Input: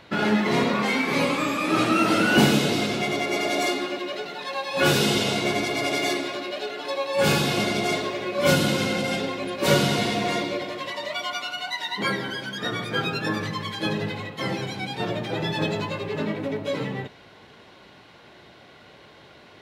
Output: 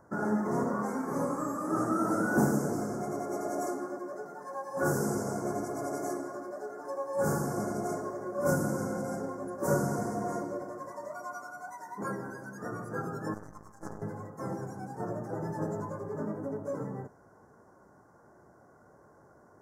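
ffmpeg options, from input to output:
-filter_complex "[0:a]asettb=1/sr,asplit=3[s0][s1][s2];[s0]atrim=end=13.344[s3];[s1]atrim=start=13.34:end=14.02,asetpts=PTS-STARTPTS,afade=t=in:d=0.004:c=qsin,afade=t=out:st=0.676:d=0.004:c=qsin,aeval=exprs='0.237*(cos(1*acos(clip(val(0)/0.237,-1,1)))-cos(1*PI/2))+0.0668*(cos(3*acos(clip(val(0)/0.237,-1,1)))-cos(3*PI/2))+0.0168*(cos(6*acos(clip(val(0)/0.237,-1,1)))-cos(6*PI/2))':c=same[s4];[s2]atrim=start=14.016[s5];[s3][s4]acrossfade=d=0.004:c1=hsin:c2=qsin[s6];[s6][s5]acrossfade=d=0.004:c1=qsin:c2=hsin,asuperstop=centerf=3100:order=8:qfactor=0.65,volume=0.422"

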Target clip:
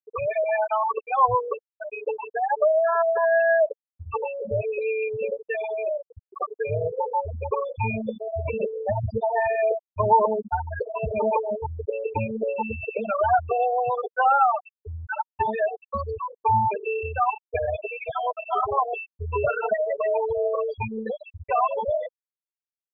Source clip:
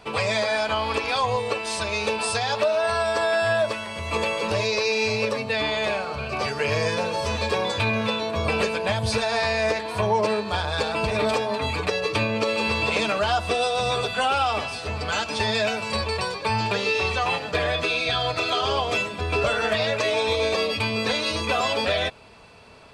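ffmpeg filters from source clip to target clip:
-af "afftfilt=real='re*gte(hypot(re,im),0.282)':imag='im*gte(hypot(re,im),0.282)':win_size=1024:overlap=0.75,firequalizer=gain_entry='entry(460,0);entry(940,8);entry(1700,2);entry(2500,-5);entry(3600,-24);entry(11000,-1)':delay=0.05:min_phase=1"

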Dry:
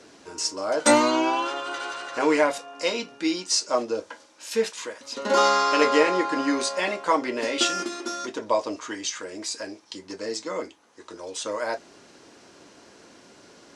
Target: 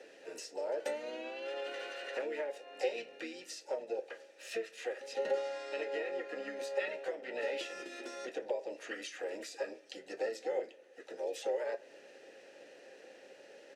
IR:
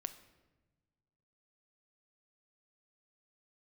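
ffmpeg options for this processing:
-filter_complex "[0:a]acompressor=threshold=0.0251:ratio=12,asplit=3[s0][s1][s2];[s0]bandpass=f=530:t=q:w=8,volume=1[s3];[s1]bandpass=f=1840:t=q:w=8,volume=0.501[s4];[s2]bandpass=f=2480:t=q:w=8,volume=0.355[s5];[s3][s4][s5]amix=inputs=3:normalize=0,asplit=3[s6][s7][s8];[s7]asetrate=33038,aresample=44100,atempo=1.33484,volume=0.251[s9];[s8]asetrate=66075,aresample=44100,atempo=0.66742,volume=0.2[s10];[s6][s9][s10]amix=inputs=3:normalize=0,crystalizer=i=4:c=0,asplit=2[s11][s12];[1:a]atrim=start_sample=2205,lowpass=2700[s13];[s12][s13]afir=irnorm=-1:irlink=0,volume=0.75[s14];[s11][s14]amix=inputs=2:normalize=0,volume=1.19"

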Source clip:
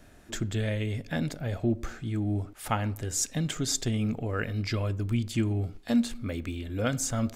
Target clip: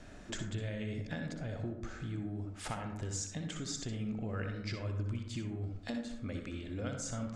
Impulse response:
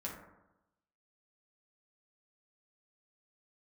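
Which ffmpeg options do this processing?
-filter_complex "[0:a]lowpass=f=7900:w=0.5412,lowpass=f=7900:w=1.3066,acompressor=threshold=0.01:ratio=6,asplit=2[s0][s1];[1:a]atrim=start_sample=2205,adelay=61[s2];[s1][s2]afir=irnorm=-1:irlink=0,volume=0.596[s3];[s0][s3]amix=inputs=2:normalize=0,volume=1.19"

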